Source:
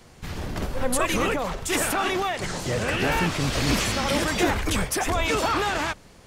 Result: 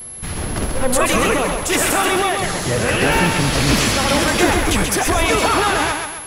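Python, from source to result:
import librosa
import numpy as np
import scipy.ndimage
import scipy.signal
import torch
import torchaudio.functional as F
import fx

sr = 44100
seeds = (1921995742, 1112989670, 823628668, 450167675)

y = fx.echo_thinned(x, sr, ms=132, feedback_pct=47, hz=180.0, wet_db=-5.0)
y = y + 10.0 ** (-37.0 / 20.0) * np.sin(2.0 * np.pi * 11000.0 * np.arange(len(y)) / sr)
y = y * 10.0 ** (6.5 / 20.0)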